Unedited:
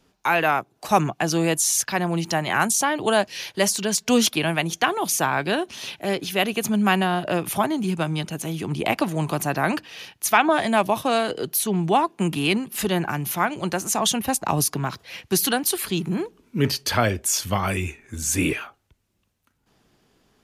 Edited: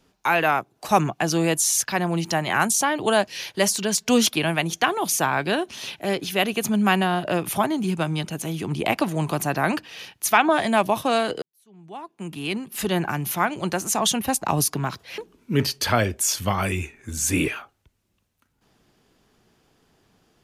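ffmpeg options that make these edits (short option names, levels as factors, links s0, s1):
-filter_complex "[0:a]asplit=3[s0][s1][s2];[s0]atrim=end=11.42,asetpts=PTS-STARTPTS,afade=t=out:st=11.416:d=0.004:c=hsin[s3];[s1]atrim=start=11.42:end=15.182,asetpts=PTS-STARTPTS,afade=t=in:d=1.55:c=qua[s4];[s2]atrim=start=16.228[s5];[s3][s4]concat=n=2:v=0:a=1[s6];[s6][s5]acrossfade=d=0.004:c1=hsin:c2=hsin"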